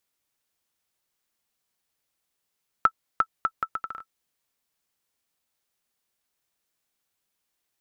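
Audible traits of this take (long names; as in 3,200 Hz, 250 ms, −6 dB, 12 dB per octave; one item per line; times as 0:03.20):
background noise floor −80 dBFS
spectral slope −1.5 dB per octave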